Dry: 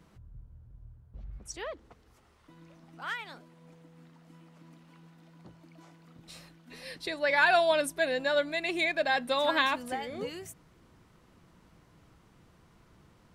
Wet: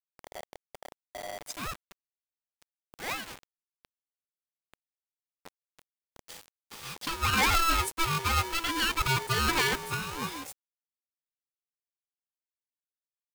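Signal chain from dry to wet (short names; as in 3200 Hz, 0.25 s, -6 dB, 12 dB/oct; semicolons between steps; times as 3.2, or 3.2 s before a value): added harmonics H 3 -43 dB, 5 -10 dB, 6 -8 dB, 8 -10 dB, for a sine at -10.5 dBFS; requantised 6-bit, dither none; polarity switched at an audio rate 660 Hz; gain -6.5 dB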